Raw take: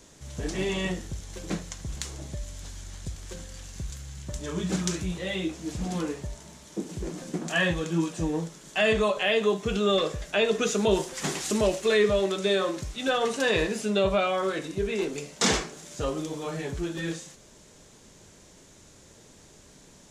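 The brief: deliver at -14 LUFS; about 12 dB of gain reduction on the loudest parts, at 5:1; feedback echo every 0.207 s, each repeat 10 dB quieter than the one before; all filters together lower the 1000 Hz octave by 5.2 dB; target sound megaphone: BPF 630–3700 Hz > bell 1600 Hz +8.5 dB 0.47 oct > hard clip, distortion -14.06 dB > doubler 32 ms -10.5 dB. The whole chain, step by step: bell 1000 Hz -8 dB; compressor 5:1, threshold -33 dBFS; BPF 630–3700 Hz; bell 1600 Hz +8.5 dB 0.47 oct; feedback echo 0.207 s, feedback 32%, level -10 dB; hard clip -31 dBFS; doubler 32 ms -10.5 dB; gain +26.5 dB

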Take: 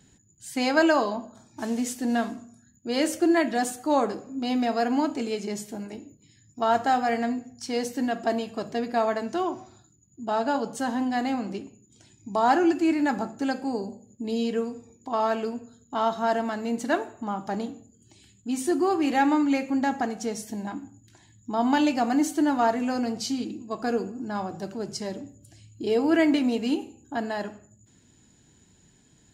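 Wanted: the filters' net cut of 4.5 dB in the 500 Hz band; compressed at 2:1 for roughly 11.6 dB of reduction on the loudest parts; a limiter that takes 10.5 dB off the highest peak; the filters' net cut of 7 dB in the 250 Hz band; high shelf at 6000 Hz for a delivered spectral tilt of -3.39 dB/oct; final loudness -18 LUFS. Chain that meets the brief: bell 250 Hz -7 dB; bell 500 Hz -4.5 dB; high shelf 6000 Hz +4.5 dB; compressor 2:1, threshold -40 dBFS; gain +23.5 dB; limiter -8.5 dBFS

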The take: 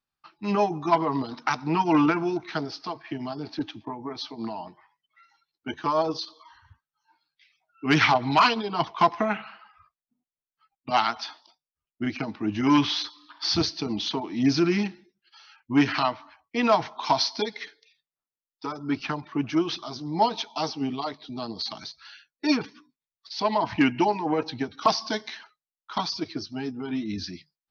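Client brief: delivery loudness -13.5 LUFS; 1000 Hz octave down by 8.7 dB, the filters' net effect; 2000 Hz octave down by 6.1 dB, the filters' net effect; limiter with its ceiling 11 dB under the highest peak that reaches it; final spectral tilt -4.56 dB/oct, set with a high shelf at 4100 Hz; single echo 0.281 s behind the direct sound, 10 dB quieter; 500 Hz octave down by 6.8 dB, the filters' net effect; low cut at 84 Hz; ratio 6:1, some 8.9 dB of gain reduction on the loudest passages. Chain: HPF 84 Hz; bell 500 Hz -7.5 dB; bell 1000 Hz -7 dB; bell 2000 Hz -7 dB; high shelf 4100 Hz +6 dB; compressor 6:1, threshold -28 dBFS; limiter -26.5 dBFS; echo 0.281 s -10 dB; gain +23 dB

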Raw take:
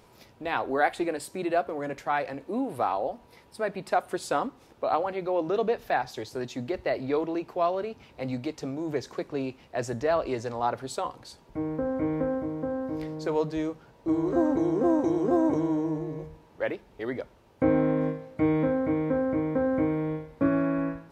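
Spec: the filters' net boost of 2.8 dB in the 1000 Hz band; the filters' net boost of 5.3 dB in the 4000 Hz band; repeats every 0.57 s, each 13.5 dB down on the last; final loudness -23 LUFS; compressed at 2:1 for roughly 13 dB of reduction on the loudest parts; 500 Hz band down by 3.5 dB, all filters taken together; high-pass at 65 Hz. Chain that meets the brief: HPF 65 Hz; bell 500 Hz -6.5 dB; bell 1000 Hz +6.5 dB; bell 4000 Hz +6 dB; compressor 2:1, threshold -43 dBFS; feedback echo 0.57 s, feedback 21%, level -13.5 dB; gain +16.5 dB

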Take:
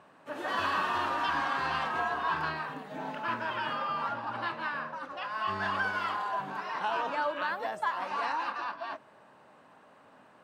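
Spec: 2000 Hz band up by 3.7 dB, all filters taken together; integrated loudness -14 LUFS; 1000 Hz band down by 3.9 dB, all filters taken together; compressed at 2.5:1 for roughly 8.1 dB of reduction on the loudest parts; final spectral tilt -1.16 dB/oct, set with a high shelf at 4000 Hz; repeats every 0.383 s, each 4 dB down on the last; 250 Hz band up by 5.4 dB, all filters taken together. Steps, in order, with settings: bell 250 Hz +7 dB; bell 1000 Hz -7.5 dB; bell 2000 Hz +7.5 dB; high shelf 4000 Hz +4.5 dB; compressor 2.5:1, threshold -38 dBFS; feedback echo 0.383 s, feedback 63%, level -4 dB; gain +22 dB

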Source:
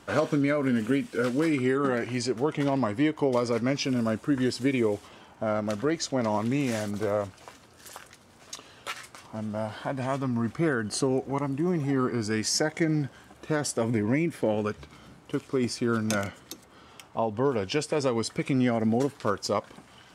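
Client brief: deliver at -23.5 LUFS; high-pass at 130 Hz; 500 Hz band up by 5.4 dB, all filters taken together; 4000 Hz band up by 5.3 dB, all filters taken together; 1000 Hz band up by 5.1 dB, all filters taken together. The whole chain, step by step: HPF 130 Hz; bell 500 Hz +5.5 dB; bell 1000 Hz +4.5 dB; bell 4000 Hz +7 dB; gain +1 dB

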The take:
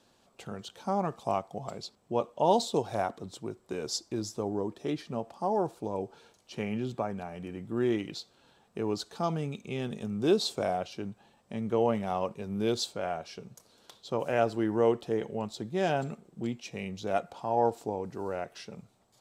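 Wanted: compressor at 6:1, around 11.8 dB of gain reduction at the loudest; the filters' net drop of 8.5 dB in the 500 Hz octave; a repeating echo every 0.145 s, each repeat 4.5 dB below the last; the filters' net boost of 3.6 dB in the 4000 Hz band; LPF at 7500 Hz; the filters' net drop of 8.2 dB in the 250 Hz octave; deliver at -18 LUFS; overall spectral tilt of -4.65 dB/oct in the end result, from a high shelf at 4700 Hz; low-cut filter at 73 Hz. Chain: HPF 73 Hz; LPF 7500 Hz; bell 250 Hz -8.5 dB; bell 500 Hz -8.5 dB; bell 4000 Hz +8 dB; high shelf 4700 Hz -7 dB; compressor 6:1, threshold -38 dBFS; feedback echo 0.145 s, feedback 60%, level -4.5 dB; gain +24 dB

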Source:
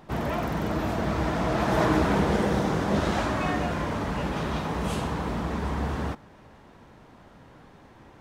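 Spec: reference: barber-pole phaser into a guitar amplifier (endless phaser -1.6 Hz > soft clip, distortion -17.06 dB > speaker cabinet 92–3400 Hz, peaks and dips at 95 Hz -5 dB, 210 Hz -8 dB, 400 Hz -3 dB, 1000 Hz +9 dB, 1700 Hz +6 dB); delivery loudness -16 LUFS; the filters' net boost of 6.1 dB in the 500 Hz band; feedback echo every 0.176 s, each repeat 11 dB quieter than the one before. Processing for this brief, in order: bell 500 Hz +8.5 dB; feedback echo 0.176 s, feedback 28%, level -11 dB; endless phaser -1.6 Hz; soft clip -16.5 dBFS; speaker cabinet 92–3400 Hz, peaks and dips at 95 Hz -5 dB, 210 Hz -8 dB, 400 Hz -3 dB, 1000 Hz +9 dB, 1700 Hz +6 dB; gain +11 dB

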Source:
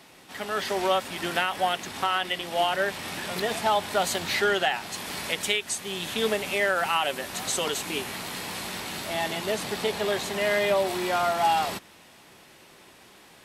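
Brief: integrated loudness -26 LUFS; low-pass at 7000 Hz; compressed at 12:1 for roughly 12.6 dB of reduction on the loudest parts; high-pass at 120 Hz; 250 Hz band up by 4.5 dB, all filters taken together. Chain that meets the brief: HPF 120 Hz; LPF 7000 Hz; bell 250 Hz +7 dB; compressor 12:1, threshold -31 dBFS; gain +9 dB

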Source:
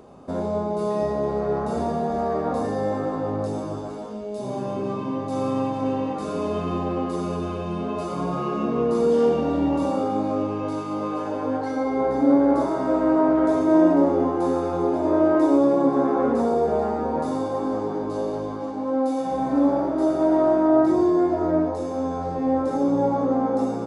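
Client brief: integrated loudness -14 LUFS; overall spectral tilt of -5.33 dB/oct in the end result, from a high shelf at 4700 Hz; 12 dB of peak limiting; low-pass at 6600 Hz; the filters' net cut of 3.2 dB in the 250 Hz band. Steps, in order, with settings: LPF 6600 Hz; bell 250 Hz -4 dB; high shelf 4700 Hz -7.5 dB; gain +15 dB; limiter -5.5 dBFS

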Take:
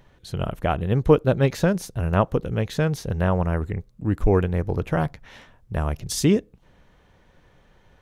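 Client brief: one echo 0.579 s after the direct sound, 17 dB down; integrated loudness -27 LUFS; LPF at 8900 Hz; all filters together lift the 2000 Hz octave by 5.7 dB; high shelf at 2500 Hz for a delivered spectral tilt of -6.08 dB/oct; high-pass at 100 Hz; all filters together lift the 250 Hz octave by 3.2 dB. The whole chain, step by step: HPF 100 Hz; LPF 8900 Hz; bell 250 Hz +5 dB; bell 2000 Hz +6 dB; high shelf 2500 Hz +4 dB; echo 0.579 s -17 dB; gain -5.5 dB

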